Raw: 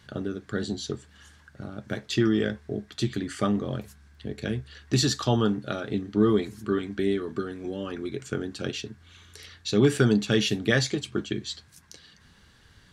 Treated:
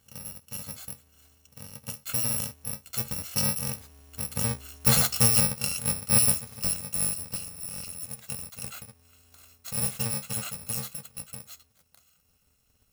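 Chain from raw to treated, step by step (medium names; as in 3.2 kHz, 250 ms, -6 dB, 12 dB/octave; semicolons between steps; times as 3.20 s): bit-reversed sample order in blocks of 128 samples; Doppler pass-by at 4.97 s, 6 m/s, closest 8.3 m; trim +3 dB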